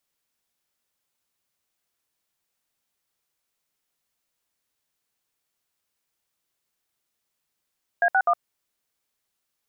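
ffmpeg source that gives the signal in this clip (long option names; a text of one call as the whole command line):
ffmpeg -f lavfi -i "aevalsrc='0.112*clip(min(mod(t,0.126),0.063-mod(t,0.126))/0.002,0,1)*(eq(floor(t/0.126),0)*(sin(2*PI*697*mod(t,0.126))+sin(2*PI*1633*mod(t,0.126)))+eq(floor(t/0.126),1)*(sin(2*PI*770*mod(t,0.126))+sin(2*PI*1477*mod(t,0.126)))+eq(floor(t/0.126),2)*(sin(2*PI*697*mod(t,0.126))+sin(2*PI*1209*mod(t,0.126))))':duration=0.378:sample_rate=44100" out.wav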